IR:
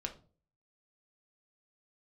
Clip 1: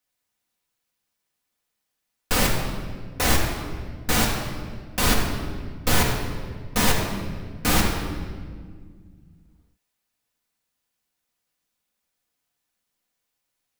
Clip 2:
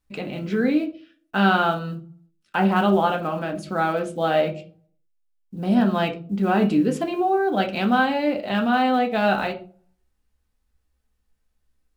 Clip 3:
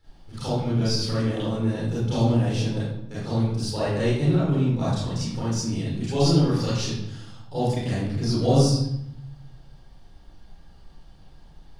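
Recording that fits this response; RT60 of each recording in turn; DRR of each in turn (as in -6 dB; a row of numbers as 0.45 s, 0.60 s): 2; 1.8 s, 0.40 s, 0.75 s; -2.0 dB, 2.5 dB, -10.5 dB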